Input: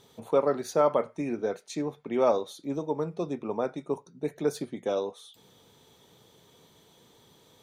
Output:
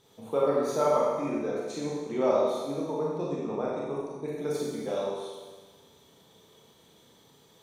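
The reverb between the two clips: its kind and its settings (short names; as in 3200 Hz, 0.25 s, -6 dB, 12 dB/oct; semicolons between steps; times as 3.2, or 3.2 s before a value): Schroeder reverb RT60 1.4 s, combs from 28 ms, DRR -5 dB; gain -6 dB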